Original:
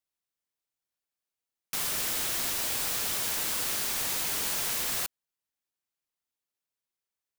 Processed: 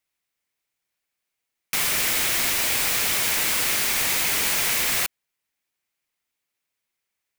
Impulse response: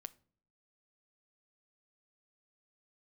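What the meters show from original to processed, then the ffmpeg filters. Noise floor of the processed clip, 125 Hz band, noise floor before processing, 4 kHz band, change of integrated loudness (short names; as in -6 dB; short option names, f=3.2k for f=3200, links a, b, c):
-82 dBFS, +7.0 dB, under -85 dBFS, +8.5 dB, +7.5 dB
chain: -af "equalizer=f=2.2k:w=2.2:g=7.5,volume=7dB"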